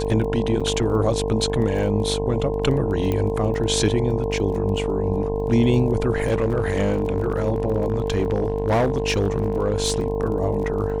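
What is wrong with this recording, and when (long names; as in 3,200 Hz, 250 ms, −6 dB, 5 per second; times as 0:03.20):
mains buzz 50 Hz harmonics 21 −27 dBFS
surface crackle 19 per second −31 dBFS
whistle 450 Hz −25 dBFS
0:00.60–0:00.61: drop-out 5.8 ms
0:03.12: click −12 dBFS
0:06.27–0:10.06: clipping −15 dBFS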